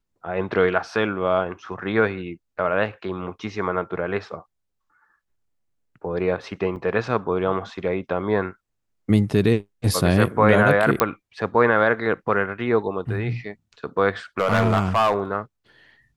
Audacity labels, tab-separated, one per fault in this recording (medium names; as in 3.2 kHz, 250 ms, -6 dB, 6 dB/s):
6.760000	6.770000	dropout 5.3 ms
11.000000	11.000000	pop -2 dBFS
14.390000	15.200000	clipped -13.5 dBFS